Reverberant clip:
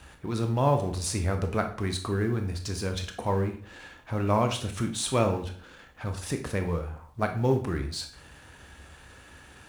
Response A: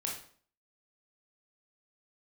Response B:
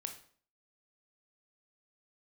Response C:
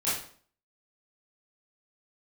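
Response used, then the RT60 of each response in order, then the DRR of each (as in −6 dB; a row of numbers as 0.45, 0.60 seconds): B; 0.50, 0.50, 0.50 seconds; −1.5, 5.5, −11.0 decibels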